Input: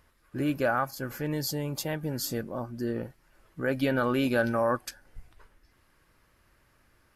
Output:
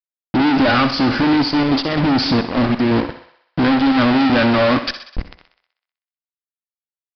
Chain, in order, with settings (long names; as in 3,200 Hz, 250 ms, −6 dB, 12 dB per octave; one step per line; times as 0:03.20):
parametric band 270 Hz +15 dB 0.31 octaves
0:01.41–0:04.09: gate pattern "..x.x..xxxxx..xx" 175 BPM −12 dB
high-shelf EQ 2,700 Hz +5 dB
fuzz pedal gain 47 dB, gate −43 dBFS
convolution reverb RT60 0.35 s, pre-delay 69 ms, DRR 17.5 dB
downsampling to 11,025 Hz
feedback echo with a high-pass in the loop 63 ms, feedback 60%, high-pass 370 Hz, level −11 dB